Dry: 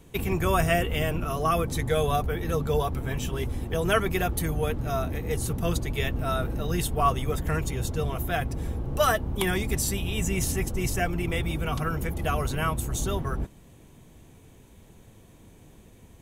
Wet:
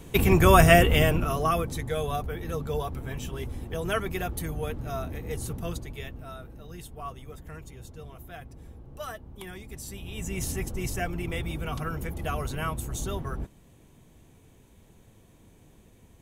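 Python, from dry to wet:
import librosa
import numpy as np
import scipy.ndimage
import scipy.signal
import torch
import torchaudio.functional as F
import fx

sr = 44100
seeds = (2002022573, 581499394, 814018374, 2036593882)

y = fx.gain(x, sr, db=fx.line((0.9, 7.0), (1.83, -5.0), (5.52, -5.0), (6.43, -15.5), (9.68, -15.5), (10.46, -4.0)))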